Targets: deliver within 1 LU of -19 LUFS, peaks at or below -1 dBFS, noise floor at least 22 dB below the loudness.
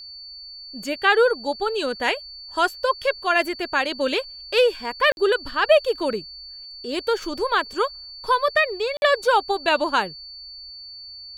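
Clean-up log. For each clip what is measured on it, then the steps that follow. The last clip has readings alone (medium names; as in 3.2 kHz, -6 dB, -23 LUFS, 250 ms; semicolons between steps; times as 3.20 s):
dropouts 2; longest dropout 51 ms; steady tone 4.5 kHz; tone level -37 dBFS; loudness -22.0 LUFS; peak level -4.5 dBFS; loudness target -19.0 LUFS
-> interpolate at 5.12/8.97 s, 51 ms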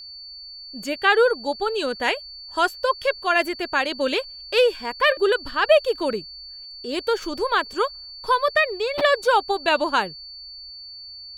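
dropouts 0; steady tone 4.5 kHz; tone level -37 dBFS
-> band-stop 4.5 kHz, Q 30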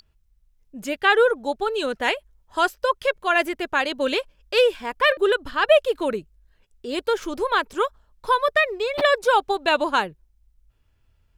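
steady tone not found; loudness -22.0 LUFS; peak level -4.5 dBFS; loudness target -19.0 LUFS
-> trim +3 dB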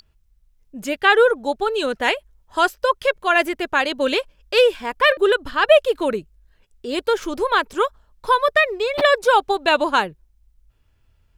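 loudness -19.0 LUFS; peak level -1.5 dBFS; noise floor -61 dBFS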